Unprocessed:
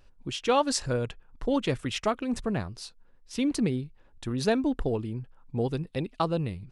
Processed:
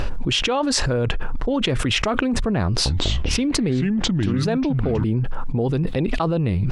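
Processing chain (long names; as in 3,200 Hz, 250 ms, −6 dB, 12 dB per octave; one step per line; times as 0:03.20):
low-pass filter 2,600 Hz 6 dB per octave
0:02.66–0:05.04: delay with pitch and tempo change per echo 196 ms, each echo −5 semitones, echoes 3
envelope flattener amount 100%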